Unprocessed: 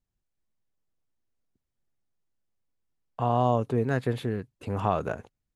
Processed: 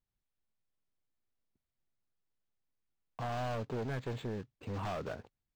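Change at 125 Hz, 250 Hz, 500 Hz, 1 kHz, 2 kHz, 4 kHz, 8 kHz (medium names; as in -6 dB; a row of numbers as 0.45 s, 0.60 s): -10.5 dB, -12.0 dB, -11.5 dB, -12.5 dB, -7.5 dB, -4.5 dB, no reading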